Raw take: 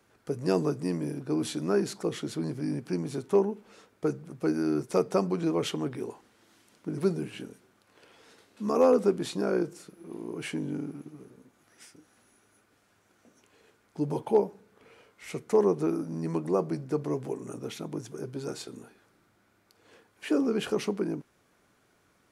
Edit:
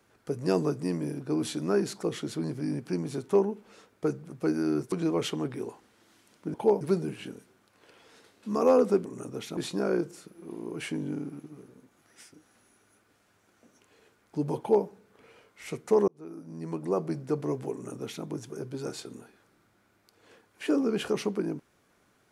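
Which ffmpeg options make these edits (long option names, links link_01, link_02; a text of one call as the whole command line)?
ffmpeg -i in.wav -filter_complex "[0:a]asplit=7[link_01][link_02][link_03][link_04][link_05][link_06][link_07];[link_01]atrim=end=4.922[link_08];[link_02]atrim=start=5.328:end=6.952[link_09];[link_03]atrim=start=14.208:end=14.482[link_10];[link_04]atrim=start=6.948:end=9.192[link_11];[link_05]atrim=start=17.338:end=17.862[link_12];[link_06]atrim=start=9.188:end=15.7,asetpts=PTS-STARTPTS,afade=type=out:start_time=6.508:duration=0.004:curve=hsin[link_13];[link_07]atrim=start=15.7,asetpts=PTS-STARTPTS,afade=type=in:duration=1.05[link_14];[link_08][link_09]acrossfade=duration=0.004:curve1=hsin:curve2=hsin[link_15];[link_15][link_10]acrossfade=duration=0.004:curve1=hsin:curve2=hsin[link_16];[link_16][link_11]acrossfade=duration=0.004:curve1=hsin:curve2=hsin[link_17];[link_17][link_12]acrossfade=duration=0.004:curve1=hsin:curve2=hsin[link_18];[link_13][link_14]concat=n=2:v=0:a=1[link_19];[link_18][link_19]acrossfade=duration=0.004:curve1=hsin:curve2=hsin" out.wav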